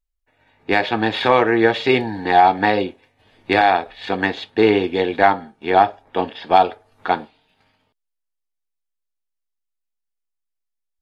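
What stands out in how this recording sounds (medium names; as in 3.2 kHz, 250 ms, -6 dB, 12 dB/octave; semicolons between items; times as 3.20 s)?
noise floor -78 dBFS; spectral tilt -2.5 dB/octave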